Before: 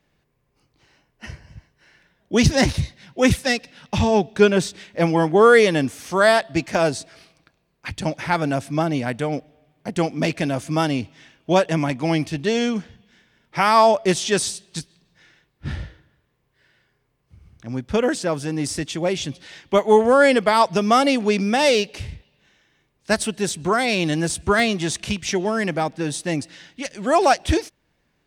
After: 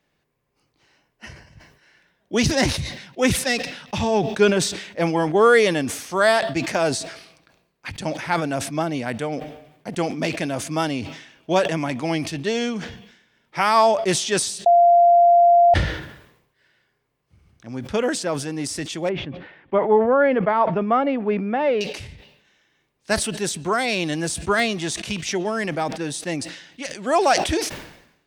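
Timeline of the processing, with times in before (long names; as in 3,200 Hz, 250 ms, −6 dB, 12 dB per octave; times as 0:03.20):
0:14.66–0:15.74: beep over 693 Hz −8 dBFS
0:19.09–0:21.81: Bessel low-pass filter 1,500 Hz, order 4
whole clip: low-shelf EQ 150 Hz −8.5 dB; level that may fall only so fast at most 73 dB per second; level −1.5 dB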